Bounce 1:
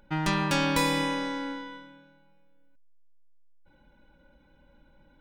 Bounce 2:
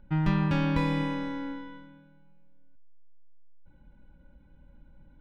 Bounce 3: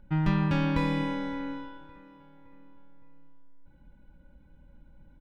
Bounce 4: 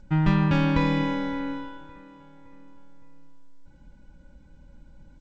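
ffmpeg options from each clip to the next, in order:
ffmpeg -i in.wav -filter_complex "[0:a]bass=frequency=250:gain=13,treble=frequency=4000:gain=-12,acrossover=split=5200[link_01][link_02];[link_02]acompressor=threshold=-54dB:ratio=4:attack=1:release=60[link_03];[link_01][link_03]amix=inputs=2:normalize=0,volume=-5.5dB" out.wav
ffmpeg -i in.wav -filter_complex "[0:a]asplit=2[link_01][link_02];[link_02]adelay=564,lowpass=frequency=3600:poles=1,volume=-18.5dB,asplit=2[link_03][link_04];[link_04]adelay=564,lowpass=frequency=3600:poles=1,volume=0.48,asplit=2[link_05][link_06];[link_06]adelay=564,lowpass=frequency=3600:poles=1,volume=0.48,asplit=2[link_07][link_08];[link_08]adelay=564,lowpass=frequency=3600:poles=1,volume=0.48[link_09];[link_01][link_03][link_05][link_07][link_09]amix=inputs=5:normalize=0" out.wav
ffmpeg -i in.wav -af "volume=4.5dB" -ar 16000 -c:a g722 out.g722

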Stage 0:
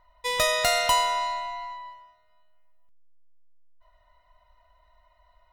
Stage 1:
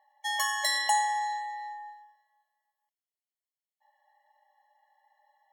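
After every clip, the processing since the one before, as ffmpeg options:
ffmpeg -i in.wav -af "afreqshift=-150,lowshelf=frequency=560:width_type=q:width=1.5:gain=11.5,afftfilt=real='re*eq(mod(floor(b*sr/1024/570),2),1)':imag='im*eq(mod(floor(b*sr/1024/570),2),1)':win_size=1024:overlap=0.75" out.wav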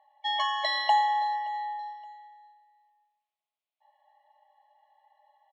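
ffmpeg -i in.wav -af "highpass=500,equalizer=frequency=660:width_type=q:width=4:gain=9,equalizer=frequency=1100:width_type=q:width=4:gain=4,equalizer=frequency=1700:width_type=q:width=4:gain=-9,equalizer=frequency=2500:width_type=q:width=4:gain=8,equalizer=frequency=3600:width_type=q:width=4:gain=5,lowpass=frequency=3800:width=0.5412,lowpass=frequency=3800:width=1.3066,aecho=1:1:572|1144:0.0891|0.0294,volume=1.5dB" out.wav

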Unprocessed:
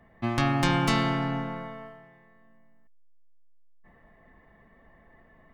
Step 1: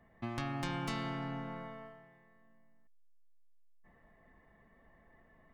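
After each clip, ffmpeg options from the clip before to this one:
ffmpeg -i in.wav -af "acompressor=threshold=-32dB:ratio=2,volume=-7dB" out.wav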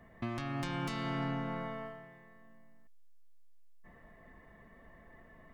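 ffmpeg -i in.wav -af "bandreject=frequency=810:width=12,alimiter=level_in=9dB:limit=-24dB:level=0:latency=1:release=499,volume=-9dB,volume=7dB" out.wav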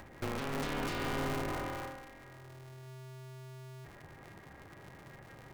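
ffmpeg -i in.wav -af "asoftclip=type=hard:threshold=-31dB,acompressor=mode=upward:threshold=-48dB:ratio=2.5,aeval=exprs='val(0)*sgn(sin(2*PI*130*n/s))':channel_layout=same,volume=1.5dB" out.wav

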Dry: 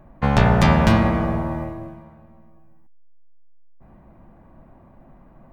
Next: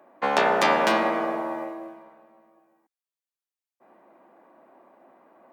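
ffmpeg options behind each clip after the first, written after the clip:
ffmpeg -i in.wav -af "highpass=frequency=330:width=0.5412,highpass=frequency=330:width=1.3066" out.wav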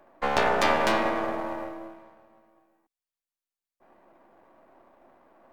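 ffmpeg -i in.wav -af "aeval=exprs='if(lt(val(0),0),0.447*val(0),val(0))':channel_layout=same" out.wav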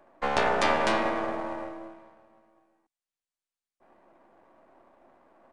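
ffmpeg -i in.wav -af "aresample=22050,aresample=44100,volume=-1.5dB" out.wav

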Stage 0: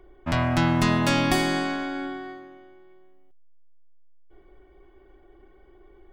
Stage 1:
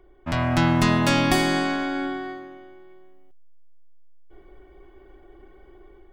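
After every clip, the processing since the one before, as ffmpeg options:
ffmpeg -i in.wav -af "dynaudnorm=framelen=180:gausssize=5:maxgain=7dB,volume=-2.5dB" out.wav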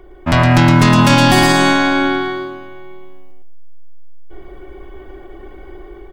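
ffmpeg -i in.wav -af "asoftclip=type=tanh:threshold=-13dB,aecho=1:1:114|228|342:0.631|0.114|0.0204,alimiter=level_in=14dB:limit=-1dB:release=50:level=0:latency=1,volume=-1dB" out.wav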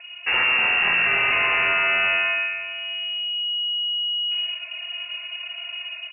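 ffmpeg -i in.wav -af "asoftclip=type=tanh:threshold=-18dB,aecho=1:1:240|480|720|960:0.106|0.053|0.0265|0.0132,lowpass=frequency=2500:width_type=q:width=0.5098,lowpass=frequency=2500:width_type=q:width=0.6013,lowpass=frequency=2500:width_type=q:width=0.9,lowpass=frequency=2500:width_type=q:width=2.563,afreqshift=-2900" out.wav

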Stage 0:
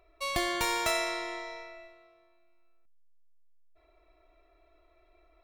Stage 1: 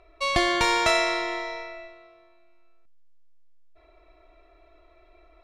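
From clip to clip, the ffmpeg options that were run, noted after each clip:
ffmpeg -i in.wav -af "lowpass=5900,volume=8dB" out.wav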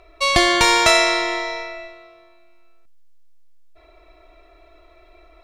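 ffmpeg -i in.wav -af "highshelf=frequency=4100:gain=7,volume=6dB" out.wav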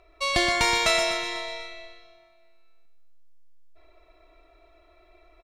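ffmpeg -i in.wav -af "aecho=1:1:124|248|372|496|620|744:0.447|0.232|0.121|0.0628|0.0327|0.017,volume=-8dB" out.wav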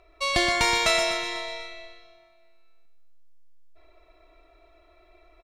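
ffmpeg -i in.wav -af anull out.wav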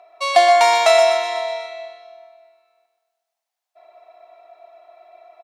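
ffmpeg -i in.wav -af "highpass=frequency=720:width_type=q:width=6.8,volume=2dB" out.wav

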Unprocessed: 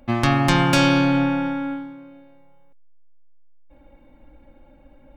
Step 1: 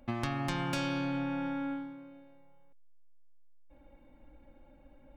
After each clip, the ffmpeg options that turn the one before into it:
ffmpeg -i in.wav -af "acompressor=threshold=-24dB:ratio=4,volume=-7.5dB" out.wav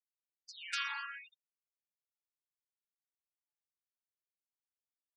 ffmpeg -i in.wav -af "aeval=exprs='max(val(0),0)':channel_layout=same,afftfilt=real='re*gte(hypot(re,im),0.00708)':imag='im*gte(hypot(re,im),0.00708)':win_size=1024:overlap=0.75,afftfilt=real='re*gte(b*sr/1024,850*pow(7000/850,0.5+0.5*sin(2*PI*0.78*pts/sr)))':imag='im*gte(b*sr/1024,850*pow(7000/850,0.5+0.5*sin(2*PI*0.78*pts/sr)))':win_size=1024:overlap=0.75,volume=5dB" out.wav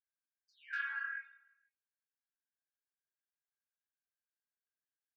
ffmpeg -i in.wav -af "flanger=delay=17:depth=7.3:speed=1.1,bandpass=frequency=1600:width_type=q:width=19:csg=0,aecho=1:1:160|320|480:0.1|0.04|0.016,volume=15dB" out.wav

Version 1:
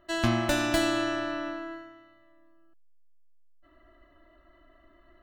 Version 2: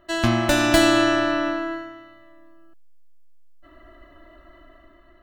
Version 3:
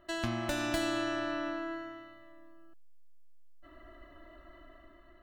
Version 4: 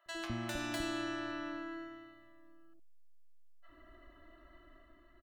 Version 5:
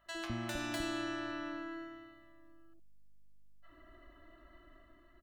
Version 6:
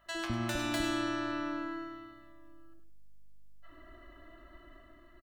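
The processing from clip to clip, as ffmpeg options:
ffmpeg -i in.wav -af "dynaudnorm=framelen=140:gausssize=9:maxgain=5.5dB,volume=5dB" out.wav
ffmpeg -i in.wav -af "acompressor=threshold=-33dB:ratio=2,volume=-5dB" out.wav
ffmpeg -i in.wav -filter_complex "[0:a]acrossover=split=640[link_01][link_02];[link_01]adelay=60[link_03];[link_03][link_02]amix=inputs=2:normalize=0,volume=-4.5dB" out.wav
ffmpeg -i in.wav -af "aeval=exprs='val(0)+0.000158*(sin(2*PI*50*n/s)+sin(2*PI*2*50*n/s)/2+sin(2*PI*3*50*n/s)/3+sin(2*PI*4*50*n/s)/4+sin(2*PI*5*50*n/s)/5)':channel_layout=same" out.wav
ffmpeg -i in.wav -af "aecho=1:1:102|204:0.282|0.0507,volume=4.5dB" out.wav

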